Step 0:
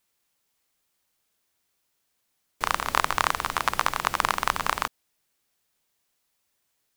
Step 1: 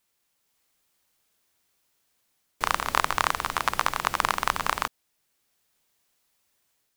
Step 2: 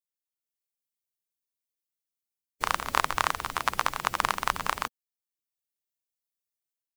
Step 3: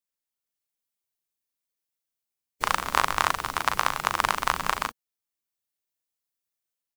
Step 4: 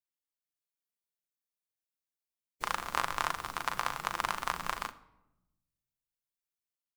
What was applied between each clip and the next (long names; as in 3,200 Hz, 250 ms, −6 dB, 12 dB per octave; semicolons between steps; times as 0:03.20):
automatic gain control gain up to 3 dB
spectral dynamics exaggerated over time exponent 1.5
double-tracking delay 39 ms −7 dB; level +2 dB
rectangular room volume 3,300 cubic metres, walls furnished, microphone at 0.83 metres; level −9 dB